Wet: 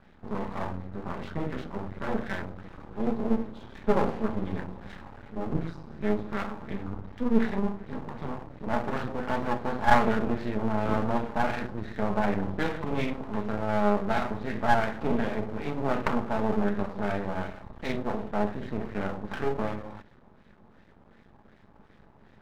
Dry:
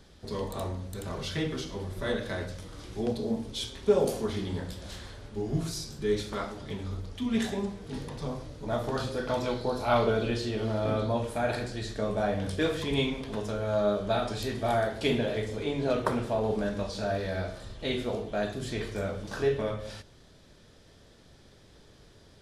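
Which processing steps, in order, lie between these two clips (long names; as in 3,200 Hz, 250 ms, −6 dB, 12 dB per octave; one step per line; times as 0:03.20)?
auto-filter low-pass sine 2.7 Hz 990–2,000 Hz
hollow resonant body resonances 210/840/3,800 Hz, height 11 dB, ringing for 45 ms
half-wave rectification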